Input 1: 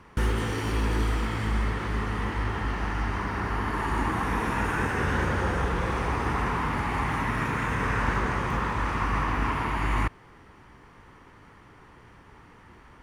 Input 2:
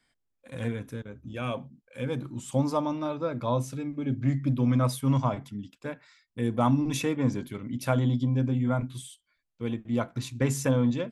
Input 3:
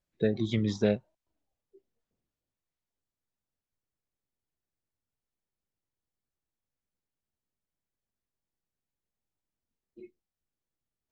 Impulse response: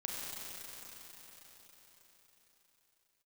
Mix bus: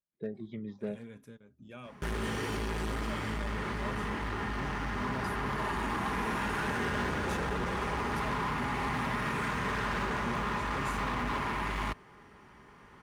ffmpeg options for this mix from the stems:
-filter_complex "[0:a]adelay=1850,volume=-3dB[a];[1:a]asoftclip=type=hard:threshold=-20dB,tremolo=f=2.3:d=0.42,adelay=350,volume=-11.5dB[b];[2:a]lowpass=1.9k,volume=-12dB[c];[a][b][c]amix=inputs=3:normalize=0,asoftclip=type=hard:threshold=-28.5dB,highpass=f=77:p=1,aecho=1:1:4.9:0.34"

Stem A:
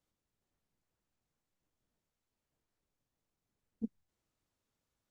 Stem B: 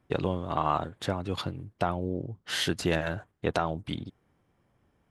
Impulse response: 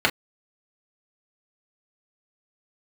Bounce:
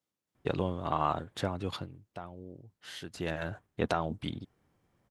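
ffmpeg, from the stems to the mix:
-filter_complex "[0:a]highpass=130,volume=-2dB,asplit=2[a][b];[b]volume=-3dB[c];[1:a]adelay=350,volume=10dB,afade=t=out:st=1.62:d=0.41:silence=0.237137,afade=t=in:st=3.07:d=0.51:silence=0.237137[d];[c]aecho=0:1:275:1[e];[a][d][e]amix=inputs=3:normalize=0"

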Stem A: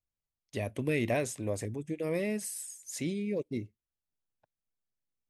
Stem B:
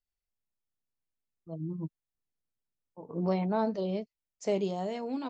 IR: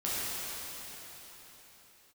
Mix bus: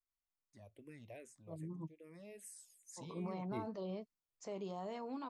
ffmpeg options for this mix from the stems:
-filter_complex "[0:a]asplit=2[a][b];[b]afreqshift=-2.5[c];[a][c]amix=inputs=2:normalize=1,volume=-3dB,afade=t=in:st=2.09:d=0.49:silence=0.354813,afade=t=in:st=3.41:d=0.22:silence=0.334965[d];[1:a]equalizer=f=1.1k:t=o:w=0.66:g=10.5,alimiter=level_in=1dB:limit=-24dB:level=0:latency=1:release=95,volume=-1dB,volume=-9.5dB[e];[d][e]amix=inputs=2:normalize=0"

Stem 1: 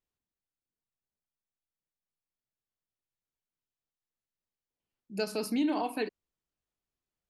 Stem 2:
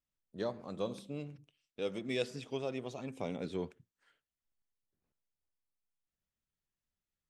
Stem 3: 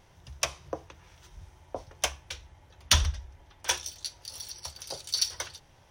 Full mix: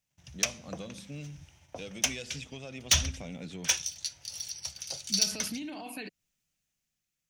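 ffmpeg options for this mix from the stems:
-filter_complex "[0:a]alimiter=level_in=5dB:limit=-24dB:level=0:latency=1:release=18,volume=-5dB,dynaudnorm=f=210:g=7:m=9dB,volume=-4dB[a];[1:a]highpass=f=79:w=0.5412,highpass=f=79:w=1.3066,asoftclip=type=tanh:threshold=-26.5dB,volume=2dB[b];[2:a]agate=range=-29dB:threshold=-55dB:ratio=16:detection=peak,highpass=77,volume=-3dB[c];[a][b]amix=inputs=2:normalize=0,highshelf=f=8.3k:g=4.5,acompressor=threshold=-38dB:ratio=2.5,volume=0dB[d];[c][d]amix=inputs=2:normalize=0,equalizer=f=160:t=o:w=0.67:g=5,equalizer=f=400:t=o:w=0.67:g=-8,equalizer=f=1k:t=o:w=0.67:g=-7,equalizer=f=2.5k:t=o:w=0.67:g=6,equalizer=f=6.3k:t=o:w=0.67:g=8,volume=15.5dB,asoftclip=hard,volume=-15.5dB"

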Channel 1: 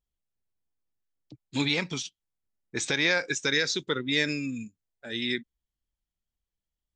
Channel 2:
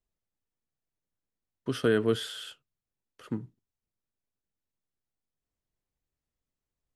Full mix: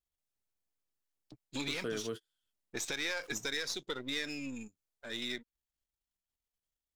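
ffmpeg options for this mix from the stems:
-filter_complex "[0:a]aeval=exprs='if(lt(val(0),0),0.447*val(0),val(0))':c=same,volume=-1.5dB,asplit=2[a][b];[1:a]flanger=delay=8.6:depth=2.4:regen=-79:speed=0.63:shape=triangular,aeval=exprs='val(0)*gte(abs(val(0)),0.00237)':c=same,volume=-2dB[c];[b]apad=whole_len=306932[d];[c][d]sidechaingate=range=-41dB:threshold=-52dB:ratio=16:detection=peak[e];[a][e]amix=inputs=2:normalize=0,bass=f=250:g=-5,treble=f=4k:g=3,acompressor=threshold=-38dB:ratio=2"

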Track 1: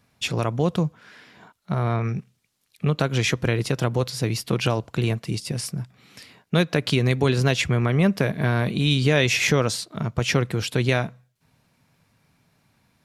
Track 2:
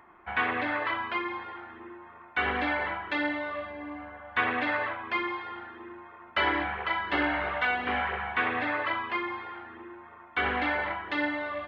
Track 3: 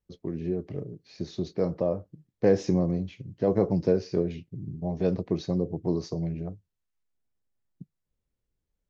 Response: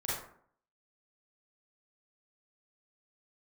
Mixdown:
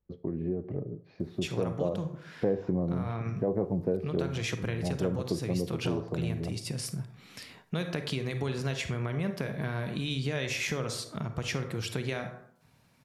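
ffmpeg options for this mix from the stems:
-filter_complex "[0:a]adelay=1200,volume=-1.5dB,asplit=2[a][b];[b]volume=-17.5dB[c];[2:a]lowpass=1.5k,volume=2.5dB,asplit=2[d][e];[e]volume=-19.5dB[f];[a]acompressor=threshold=-39dB:ratio=1.5,volume=0dB[g];[3:a]atrim=start_sample=2205[h];[c][f]amix=inputs=2:normalize=0[i];[i][h]afir=irnorm=-1:irlink=0[j];[d][g][j]amix=inputs=3:normalize=0,acompressor=threshold=-32dB:ratio=2"

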